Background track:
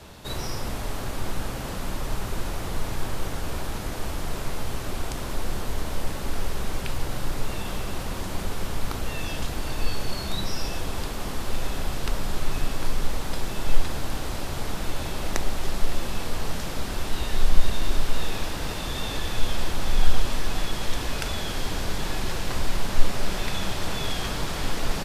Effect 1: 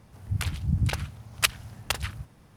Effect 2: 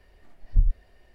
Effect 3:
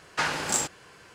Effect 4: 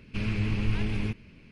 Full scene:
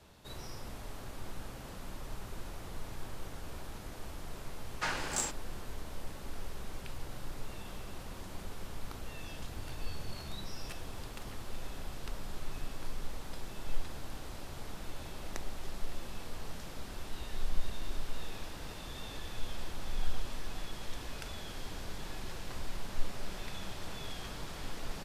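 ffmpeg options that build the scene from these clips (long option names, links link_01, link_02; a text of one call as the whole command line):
ffmpeg -i bed.wav -i cue0.wav -i cue1.wav -i cue2.wav -filter_complex "[0:a]volume=-14dB[link_01];[1:a]acompressor=threshold=-34dB:ratio=6:attack=3.2:release=140:knee=1:detection=peak[link_02];[3:a]atrim=end=1.14,asetpts=PTS-STARTPTS,volume=-8dB,afade=type=in:duration=0.004:curve=hsin,afade=type=out:start_time=1.136:duration=0.004:curve=hsin,adelay=4640[link_03];[link_02]atrim=end=2.56,asetpts=PTS-STARTPTS,volume=-12dB,afade=type=in:duration=0.004:curve=hsin,afade=type=out:start_time=2.556:duration=0.004:curve=hsin,adelay=9270[link_04];[link_01][link_03][link_04]amix=inputs=3:normalize=0" out.wav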